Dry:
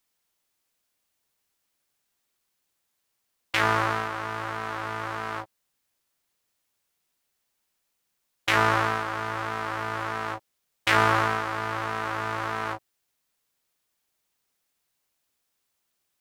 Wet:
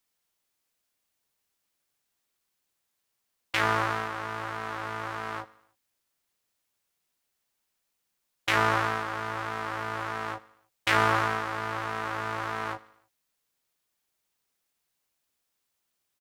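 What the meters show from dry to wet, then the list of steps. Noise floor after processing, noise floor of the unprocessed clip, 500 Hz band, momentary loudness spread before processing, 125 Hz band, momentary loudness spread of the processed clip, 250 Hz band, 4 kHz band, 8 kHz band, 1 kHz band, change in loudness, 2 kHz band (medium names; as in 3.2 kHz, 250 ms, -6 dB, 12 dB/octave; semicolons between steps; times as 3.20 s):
-80 dBFS, -78 dBFS, -2.5 dB, 12 LU, -3.0 dB, 12 LU, -2.5 dB, -2.5 dB, -2.5 dB, -2.5 dB, -2.5 dB, -2.5 dB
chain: feedback delay 77 ms, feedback 57%, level -20.5 dB; trim -2.5 dB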